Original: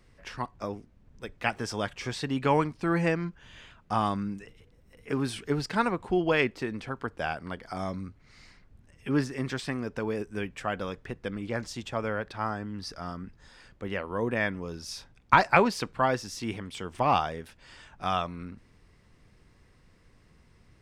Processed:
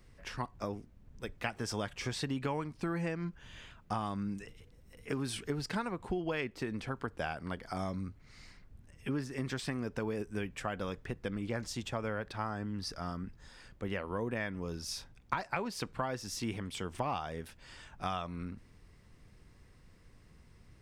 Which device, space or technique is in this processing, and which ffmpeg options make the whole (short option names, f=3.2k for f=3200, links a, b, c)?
ASMR close-microphone chain: -filter_complex "[0:a]asettb=1/sr,asplit=3[a][b][c];[a]atrim=end=4.284[d];[b]atrim=start=4.28:end=5.37,asetpts=PTS-STARTPTS,afade=t=in:d=0.004:c=qsin,afade=t=out:st=1.086:d=0.004:c=qsin,equalizer=f=6k:w=0.48:g=3[e];[c]atrim=start=5.366[f];[d][e]acrossfade=d=0.004:c1=hsin:c2=qsin[g];[g][f]acrossfade=d=0.004:c1=qsin:c2=hsin,lowshelf=f=190:g=4,acompressor=threshold=-29dB:ratio=8,highshelf=f=8.6k:g=6.5,volume=-2.5dB"